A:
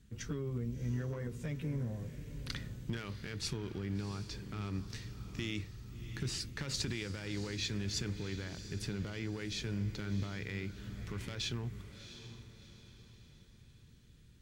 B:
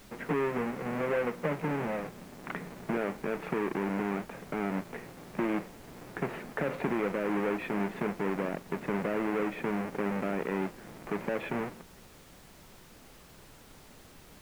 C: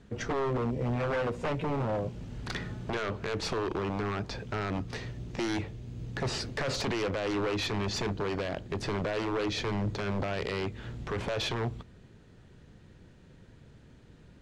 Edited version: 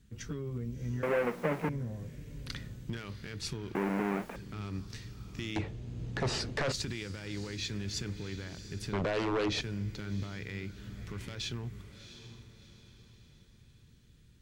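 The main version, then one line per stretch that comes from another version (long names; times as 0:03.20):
A
0:01.03–0:01.69: punch in from B
0:03.75–0:04.36: punch in from B
0:05.56–0:06.72: punch in from C
0:08.93–0:09.61: punch in from C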